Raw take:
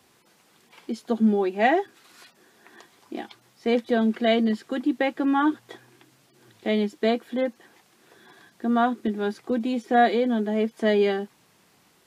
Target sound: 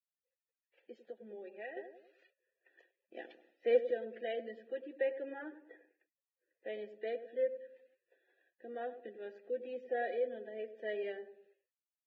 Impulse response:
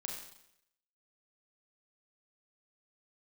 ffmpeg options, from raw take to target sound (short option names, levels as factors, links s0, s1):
-filter_complex "[0:a]asplit=3[s0][s1][s2];[s0]bandpass=f=530:t=q:w=8,volume=1[s3];[s1]bandpass=f=1840:t=q:w=8,volume=0.501[s4];[s2]bandpass=f=2480:t=q:w=8,volume=0.355[s5];[s3][s4][s5]amix=inputs=3:normalize=0,bass=f=250:g=-7,treble=f=4000:g=-7,asplit=2[s6][s7];[s7]adelay=99,lowpass=f=900:p=1,volume=0.299,asplit=2[s8][s9];[s9]adelay=99,lowpass=f=900:p=1,volume=0.5,asplit=2[s10][s11];[s11]adelay=99,lowpass=f=900:p=1,volume=0.5,asplit=2[s12][s13];[s13]adelay=99,lowpass=f=900:p=1,volume=0.5,asplit=2[s14][s15];[s15]adelay=99,lowpass=f=900:p=1,volume=0.5[s16];[s6][s8][s10][s12][s14][s16]amix=inputs=6:normalize=0,asettb=1/sr,asplit=3[s17][s18][s19];[s17]atrim=end=3.164[s20];[s18]atrim=start=3.16:end=3.91,asetpts=PTS-STARTPTS,afade=t=in:d=0.004:c=qsin,afade=t=out:st=0.746:d=0.004:c=qsin,acontrast=75[s21];[s19]atrim=start=3.906[s22];[s20][s21]acrossfade=d=0.004:c1=hsin:c2=qsin[s23];[s23][s22]acrossfade=d=0.004:c1=qsin:c2=hsin,agate=range=0.0224:threshold=0.001:ratio=3:detection=peak,asettb=1/sr,asplit=3[s24][s25][s26];[s24]atrim=end=1.004[s27];[s25]atrim=start=1:end=1.77,asetpts=PTS-STARTPTS,afade=t=in:d=0.004:c=qsin,afade=t=out:st=0.766:d=0.004:c=qsin,acompressor=threshold=0.00794:ratio=2.5[s28];[s26]atrim=start=1.766[s29];[s27][s28]acrossfade=d=0.004:c1=hsin:c2=qsin[s30];[s30][s29]acrossfade=d=0.004:c1=qsin:c2=hsin,asettb=1/sr,asplit=3[s31][s32][s33];[s31]atrim=end=5.314[s34];[s32]atrim=start=5.31:end=6.69,asetpts=PTS-STARTPTS,afade=t=in:d=0.004:c=qsin,afade=t=out:st=1.376:d=0.004:c=qsin,highshelf=f=2600:t=q:w=1.5:g=-7.5[s35];[s33]atrim=start=6.686[s36];[s34][s35]acrossfade=d=0.004:c1=hsin:c2=qsin[s37];[s37][s36]acrossfade=d=0.004:c1=qsin:c2=hsin,volume=0.531" -ar 22050 -c:a libvorbis -b:a 16k